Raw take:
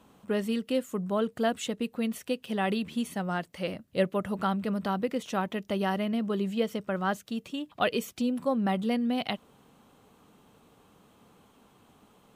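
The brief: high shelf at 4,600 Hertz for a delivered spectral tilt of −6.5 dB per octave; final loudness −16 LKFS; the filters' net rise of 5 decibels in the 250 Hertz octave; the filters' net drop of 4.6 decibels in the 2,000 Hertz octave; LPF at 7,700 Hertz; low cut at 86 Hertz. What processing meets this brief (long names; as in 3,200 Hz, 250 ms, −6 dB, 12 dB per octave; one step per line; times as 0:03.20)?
high-pass filter 86 Hz
low-pass filter 7,700 Hz
parametric band 250 Hz +6 dB
parametric band 2,000 Hz −5.5 dB
high-shelf EQ 4,600 Hz −4.5 dB
level +11.5 dB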